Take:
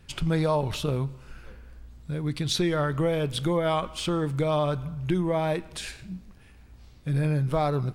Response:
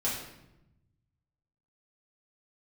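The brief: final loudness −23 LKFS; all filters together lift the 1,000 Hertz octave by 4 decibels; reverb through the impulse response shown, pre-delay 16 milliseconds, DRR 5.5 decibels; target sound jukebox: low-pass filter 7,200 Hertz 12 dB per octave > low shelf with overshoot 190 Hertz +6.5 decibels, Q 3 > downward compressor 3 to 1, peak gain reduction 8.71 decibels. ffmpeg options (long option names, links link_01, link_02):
-filter_complex "[0:a]equalizer=frequency=1000:width_type=o:gain=5.5,asplit=2[link_01][link_02];[1:a]atrim=start_sample=2205,adelay=16[link_03];[link_02][link_03]afir=irnorm=-1:irlink=0,volume=-12.5dB[link_04];[link_01][link_04]amix=inputs=2:normalize=0,lowpass=7200,lowshelf=frequency=190:width_type=q:width=3:gain=6.5,acompressor=threshold=-20dB:ratio=3,volume=1dB"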